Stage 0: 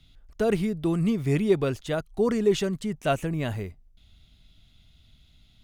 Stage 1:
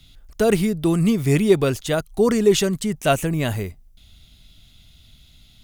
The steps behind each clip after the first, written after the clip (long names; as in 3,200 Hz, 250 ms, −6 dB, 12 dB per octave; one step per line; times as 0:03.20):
high-shelf EQ 5,700 Hz +11.5 dB
level +6 dB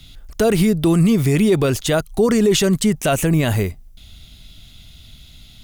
brickwall limiter −15 dBFS, peak gain reduction 10.5 dB
level +7.5 dB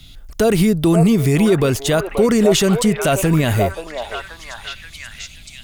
echo through a band-pass that steps 531 ms, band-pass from 740 Hz, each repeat 0.7 octaves, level −1 dB
level +1 dB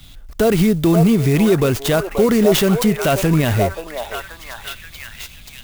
converter with an unsteady clock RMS 0.029 ms